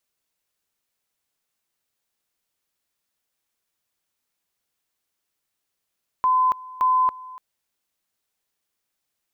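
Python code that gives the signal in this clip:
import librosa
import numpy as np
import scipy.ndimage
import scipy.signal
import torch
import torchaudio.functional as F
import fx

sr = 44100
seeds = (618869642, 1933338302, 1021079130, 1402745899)

y = fx.two_level_tone(sr, hz=1020.0, level_db=-15.5, drop_db=20.5, high_s=0.28, low_s=0.29, rounds=2)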